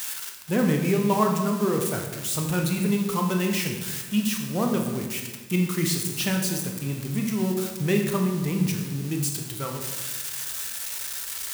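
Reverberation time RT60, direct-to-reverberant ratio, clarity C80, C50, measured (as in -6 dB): 1.3 s, 2.0 dB, 7.0 dB, 5.0 dB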